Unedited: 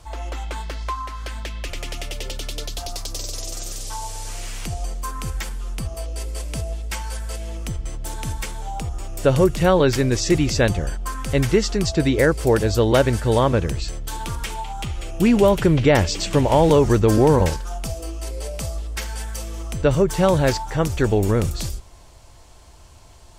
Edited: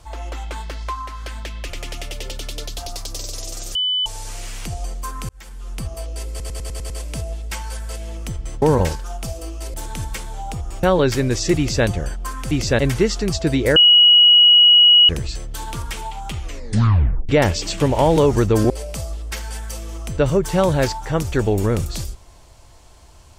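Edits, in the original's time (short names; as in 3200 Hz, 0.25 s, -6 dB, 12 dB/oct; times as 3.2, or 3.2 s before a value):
3.75–4.06 bleep 3000 Hz -17 dBFS
5.29–5.8 fade in linear
6.3 stutter 0.10 s, 7 plays
9.11–9.64 cut
10.39–10.67 copy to 11.32
12.29–13.62 bleep 2910 Hz -7 dBFS
14.94 tape stop 0.88 s
17.23–18.35 move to 8.02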